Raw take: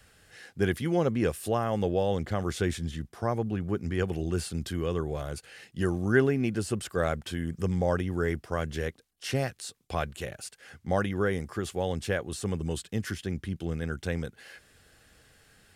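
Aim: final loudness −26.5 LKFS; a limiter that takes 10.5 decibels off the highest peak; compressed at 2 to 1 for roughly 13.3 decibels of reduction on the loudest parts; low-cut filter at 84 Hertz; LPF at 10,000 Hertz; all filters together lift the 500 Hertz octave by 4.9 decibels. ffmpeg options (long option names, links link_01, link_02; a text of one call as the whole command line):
ffmpeg -i in.wav -af "highpass=84,lowpass=10000,equalizer=frequency=500:width_type=o:gain=6,acompressor=threshold=-40dB:ratio=2,volume=15dB,alimiter=limit=-15dB:level=0:latency=1" out.wav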